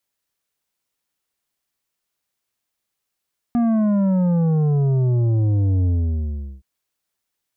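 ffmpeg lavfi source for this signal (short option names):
-f lavfi -i "aevalsrc='0.158*clip((3.07-t)/0.76,0,1)*tanh(2.66*sin(2*PI*240*3.07/log(65/240)*(exp(log(65/240)*t/3.07)-1)))/tanh(2.66)':d=3.07:s=44100"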